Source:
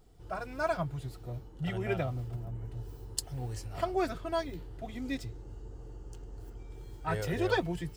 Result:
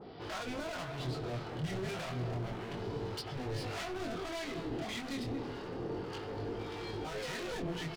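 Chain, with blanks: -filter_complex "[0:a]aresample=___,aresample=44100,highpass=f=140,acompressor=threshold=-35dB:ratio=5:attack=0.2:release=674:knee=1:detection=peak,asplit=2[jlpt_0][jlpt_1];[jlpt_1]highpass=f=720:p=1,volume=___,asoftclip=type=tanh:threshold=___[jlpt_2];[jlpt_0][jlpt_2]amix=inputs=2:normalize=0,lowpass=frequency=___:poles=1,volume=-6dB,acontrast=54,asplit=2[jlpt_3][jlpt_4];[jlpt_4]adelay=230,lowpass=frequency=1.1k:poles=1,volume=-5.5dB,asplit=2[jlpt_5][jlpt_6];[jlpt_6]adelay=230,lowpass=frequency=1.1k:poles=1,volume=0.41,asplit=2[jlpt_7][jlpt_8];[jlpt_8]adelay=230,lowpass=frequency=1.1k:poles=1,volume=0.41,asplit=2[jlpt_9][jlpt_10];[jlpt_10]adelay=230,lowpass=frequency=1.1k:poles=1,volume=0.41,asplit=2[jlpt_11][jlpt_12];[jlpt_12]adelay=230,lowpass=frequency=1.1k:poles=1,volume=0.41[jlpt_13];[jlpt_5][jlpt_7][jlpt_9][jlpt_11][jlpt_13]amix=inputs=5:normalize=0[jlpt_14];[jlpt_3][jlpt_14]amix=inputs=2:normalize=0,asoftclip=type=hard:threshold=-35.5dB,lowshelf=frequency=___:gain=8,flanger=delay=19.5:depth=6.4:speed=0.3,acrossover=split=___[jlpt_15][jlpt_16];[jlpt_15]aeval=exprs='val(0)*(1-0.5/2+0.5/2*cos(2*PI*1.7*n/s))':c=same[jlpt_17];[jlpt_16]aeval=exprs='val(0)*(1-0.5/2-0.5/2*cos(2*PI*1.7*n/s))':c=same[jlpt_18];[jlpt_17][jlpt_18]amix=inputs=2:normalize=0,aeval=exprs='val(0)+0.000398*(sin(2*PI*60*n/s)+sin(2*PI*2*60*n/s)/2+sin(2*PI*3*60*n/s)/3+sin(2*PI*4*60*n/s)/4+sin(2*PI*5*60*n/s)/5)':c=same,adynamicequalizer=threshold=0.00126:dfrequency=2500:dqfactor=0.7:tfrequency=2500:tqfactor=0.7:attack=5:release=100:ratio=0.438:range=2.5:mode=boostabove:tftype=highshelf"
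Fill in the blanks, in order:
11025, 26dB, -30.5dB, 2.6k, 320, 770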